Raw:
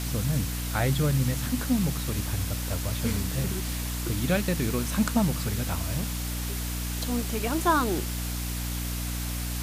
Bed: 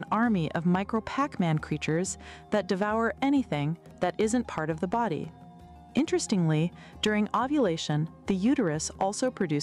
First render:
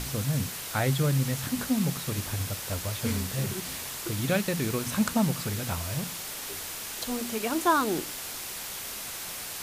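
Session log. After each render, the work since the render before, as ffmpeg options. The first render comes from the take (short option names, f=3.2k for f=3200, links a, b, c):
-af "bandreject=f=60:t=h:w=6,bandreject=f=120:t=h:w=6,bandreject=f=180:t=h:w=6,bandreject=f=240:t=h:w=6,bandreject=f=300:t=h:w=6"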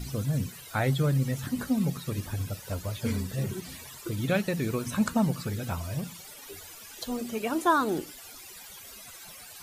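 -af "afftdn=nr=16:nf=-38"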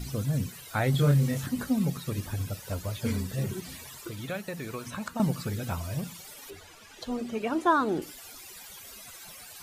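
-filter_complex "[0:a]asettb=1/sr,asplit=3[a][b][c];[a]atrim=end=0.914[d];[b]atrim=start=0.91:end=1.46,asetpts=PTS-STARTPTS,afade=t=in:d=0.004:c=qsin,afade=t=out:st=0.546:d=0.004:c=qsin,asplit=2[e][f];[f]adelay=28,volume=-2.5dB[g];[e][g]amix=inputs=2:normalize=0,atrim=end_sample=24255[h];[c]atrim=start=1.456[i];[d][h]acrossfade=d=0.004:c1=hsin:c2=qsin[j];[j][i]acrossfade=d=0.004:c1=qsin:c2=hsin,asettb=1/sr,asplit=3[k][l][m];[k]atrim=end=4.054[n];[l]atrim=start=4.05:end=5.2,asetpts=PTS-STARTPTS,afade=t=in:d=0.004:c=qsin,afade=t=out:st=1.146:d=0.004:c=qsin,acrossover=split=590|1800|5500[o][p][q][r];[o]acompressor=threshold=-40dB:ratio=3[s];[p]acompressor=threshold=-37dB:ratio=3[t];[q]acompressor=threshold=-48dB:ratio=3[u];[r]acompressor=threshold=-51dB:ratio=3[v];[s][t][u][v]amix=inputs=4:normalize=0[w];[m]atrim=start=5.196[x];[n][w]acrossfade=d=0.004:c1=hsin:c2=qsin[y];[y][x]acrossfade=d=0.004:c1=qsin:c2=hsin,asettb=1/sr,asplit=3[z][aa][ab];[z]atrim=end=6.504[ac];[aa]atrim=start=6.5:end=8.02,asetpts=PTS-STARTPTS,afade=t=in:d=0.004:c=qsin,afade=t=out:st=1.516:d=0.004:c=qsin,aemphasis=mode=reproduction:type=50fm[ad];[ab]atrim=start=8.016[ae];[ac][ad]acrossfade=d=0.004:c1=hsin:c2=qsin[af];[af][ae]acrossfade=d=0.004:c1=qsin:c2=hsin"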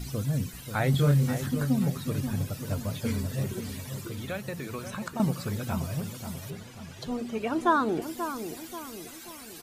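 -filter_complex "[0:a]asplit=2[a][b];[b]adelay=535,lowpass=f=1.2k:p=1,volume=-8dB,asplit=2[c][d];[d]adelay=535,lowpass=f=1.2k:p=1,volume=0.5,asplit=2[e][f];[f]adelay=535,lowpass=f=1.2k:p=1,volume=0.5,asplit=2[g][h];[h]adelay=535,lowpass=f=1.2k:p=1,volume=0.5,asplit=2[i][j];[j]adelay=535,lowpass=f=1.2k:p=1,volume=0.5,asplit=2[k][l];[l]adelay=535,lowpass=f=1.2k:p=1,volume=0.5[m];[a][c][e][g][i][k][m]amix=inputs=7:normalize=0"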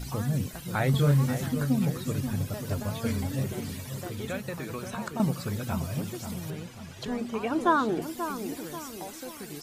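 -filter_complex "[1:a]volume=-14.5dB[a];[0:a][a]amix=inputs=2:normalize=0"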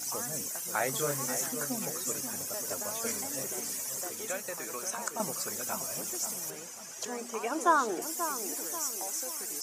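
-af "highpass=470,highshelf=f=4.9k:t=q:w=3:g=8"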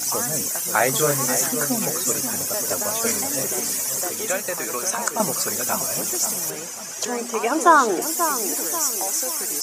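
-af "volume=11.5dB,alimiter=limit=-2dB:level=0:latency=1"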